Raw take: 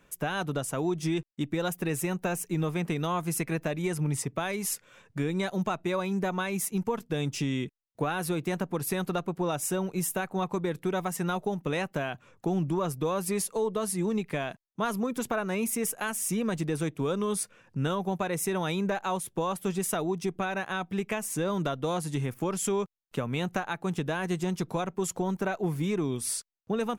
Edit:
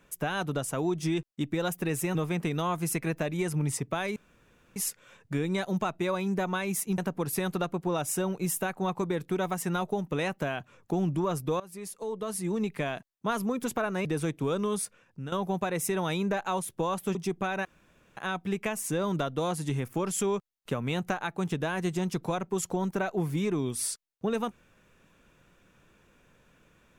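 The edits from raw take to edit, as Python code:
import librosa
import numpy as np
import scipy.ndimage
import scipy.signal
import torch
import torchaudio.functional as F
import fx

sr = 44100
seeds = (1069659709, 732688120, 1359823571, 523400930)

y = fx.edit(x, sr, fx.cut(start_s=2.15, length_s=0.45),
    fx.insert_room_tone(at_s=4.61, length_s=0.6),
    fx.cut(start_s=6.83, length_s=1.69),
    fx.fade_in_from(start_s=13.14, length_s=1.12, floor_db=-20.0),
    fx.cut(start_s=15.59, length_s=1.04),
    fx.fade_out_to(start_s=17.25, length_s=0.65, floor_db=-11.5),
    fx.cut(start_s=19.73, length_s=0.4),
    fx.insert_room_tone(at_s=20.63, length_s=0.52), tone=tone)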